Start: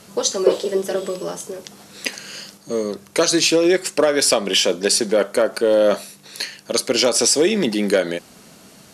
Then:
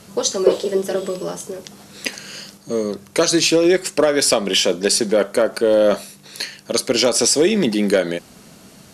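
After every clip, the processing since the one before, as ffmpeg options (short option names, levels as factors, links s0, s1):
-af "lowshelf=f=180:g=6.5"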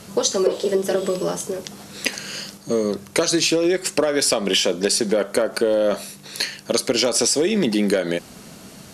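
-af "acompressor=threshold=0.126:ratio=10,volume=1.41"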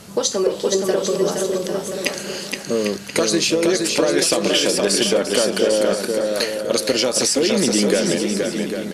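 -af "aecho=1:1:470|799|1029|1191|1303:0.631|0.398|0.251|0.158|0.1"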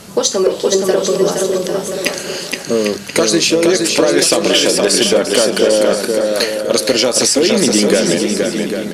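-af "volume=2.51,asoftclip=hard,volume=0.398,bandreject=f=50:t=h:w=6,bandreject=f=100:t=h:w=6,bandreject=f=150:t=h:w=6,bandreject=f=200:t=h:w=6,volume=1.88"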